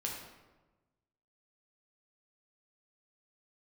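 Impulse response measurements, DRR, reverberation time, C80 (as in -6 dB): -2.0 dB, 1.2 s, 5.5 dB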